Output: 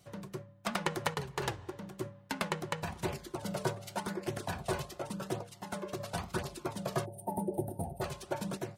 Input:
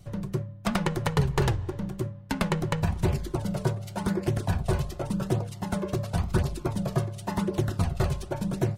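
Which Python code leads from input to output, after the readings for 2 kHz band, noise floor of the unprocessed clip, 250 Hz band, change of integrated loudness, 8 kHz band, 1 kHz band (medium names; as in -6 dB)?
-3.5 dB, -41 dBFS, -10.5 dB, -9.0 dB, -3.0 dB, -4.0 dB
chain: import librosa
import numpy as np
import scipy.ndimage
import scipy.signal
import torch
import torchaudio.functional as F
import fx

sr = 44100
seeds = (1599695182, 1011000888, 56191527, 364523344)

y = fx.spec_box(x, sr, start_s=7.05, length_s=0.97, low_hz=940.0, high_hz=8500.0, gain_db=-28)
y = fx.highpass(y, sr, hz=490.0, slope=6)
y = fx.tremolo_random(y, sr, seeds[0], hz=3.5, depth_pct=55)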